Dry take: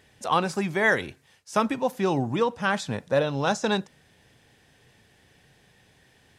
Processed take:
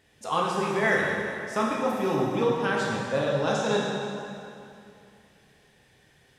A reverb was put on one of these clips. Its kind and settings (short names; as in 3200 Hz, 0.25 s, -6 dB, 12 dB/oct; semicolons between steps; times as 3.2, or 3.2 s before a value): plate-style reverb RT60 2.6 s, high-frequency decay 0.8×, DRR -4 dB; gain -6 dB